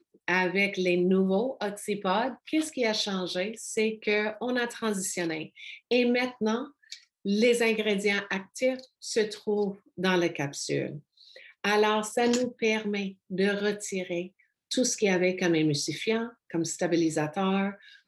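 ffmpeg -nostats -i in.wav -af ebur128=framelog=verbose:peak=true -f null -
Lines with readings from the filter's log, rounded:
Integrated loudness:
  I:         -27.9 LUFS
  Threshold: -38.2 LUFS
Loudness range:
  LRA:         2.2 LU
  Threshold: -48.4 LUFS
  LRA low:   -29.5 LUFS
  LRA high:  -27.3 LUFS
True peak:
  Peak:      -11.1 dBFS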